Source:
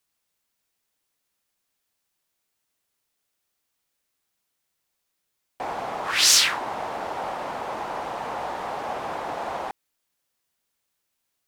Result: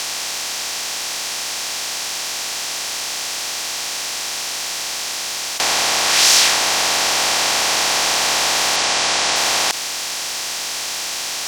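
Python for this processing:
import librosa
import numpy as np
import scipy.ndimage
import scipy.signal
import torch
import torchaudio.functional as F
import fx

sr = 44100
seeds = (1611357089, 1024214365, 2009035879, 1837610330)

y = fx.bin_compress(x, sr, power=0.2)
y = fx.savgol(y, sr, points=9, at=(8.76, 9.36))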